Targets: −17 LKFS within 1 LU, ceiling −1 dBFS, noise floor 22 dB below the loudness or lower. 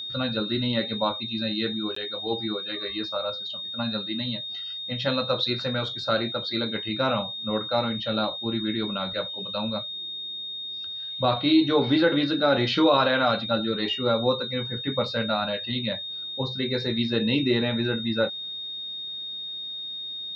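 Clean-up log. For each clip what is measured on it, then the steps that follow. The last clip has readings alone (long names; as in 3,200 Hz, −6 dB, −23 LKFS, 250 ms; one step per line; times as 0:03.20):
number of dropouts 1; longest dropout 14 ms; interfering tone 3,700 Hz; level of the tone −32 dBFS; integrated loudness −26.0 LKFS; sample peak −8.5 dBFS; target loudness −17.0 LKFS
→ repair the gap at 0:01.95, 14 ms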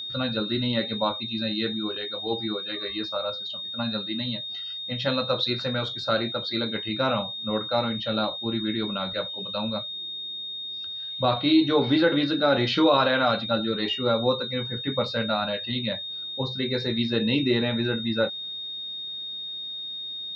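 number of dropouts 0; interfering tone 3,700 Hz; level of the tone −32 dBFS
→ notch filter 3,700 Hz, Q 30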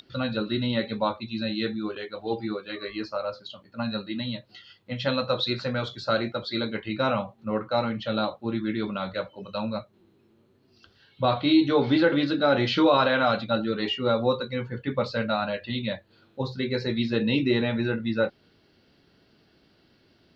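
interfering tone none found; integrated loudness −26.5 LKFS; sample peak −8.5 dBFS; target loudness −17.0 LKFS
→ level +9.5 dB
brickwall limiter −1 dBFS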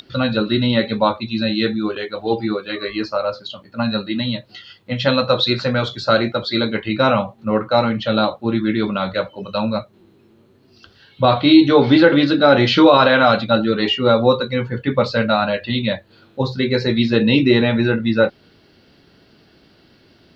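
integrated loudness −17.5 LKFS; sample peak −1.0 dBFS; background noise floor −53 dBFS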